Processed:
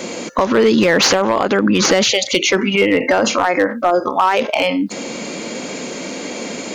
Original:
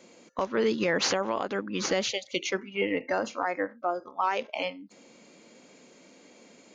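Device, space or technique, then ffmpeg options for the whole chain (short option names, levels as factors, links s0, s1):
loud club master: -af "acompressor=threshold=0.02:ratio=1.5,asoftclip=type=hard:threshold=0.0668,alimiter=level_in=44.7:limit=0.891:release=50:level=0:latency=1,volume=0.562"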